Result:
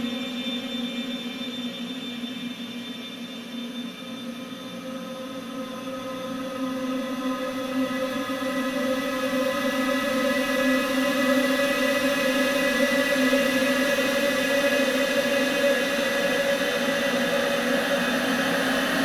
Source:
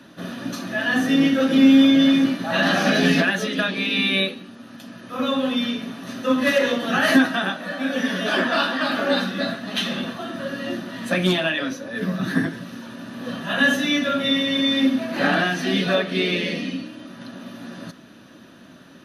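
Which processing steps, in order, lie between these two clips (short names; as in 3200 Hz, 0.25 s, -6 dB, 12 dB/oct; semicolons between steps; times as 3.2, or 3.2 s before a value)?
added harmonics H 3 -12 dB, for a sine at -4.5 dBFS; high shelf 7300 Hz +9 dB; in parallel at -5.5 dB: hard clip -18 dBFS, distortion -9 dB; on the sum: Paulstretch 16×, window 1.00 s, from 5.68; gain +2 dB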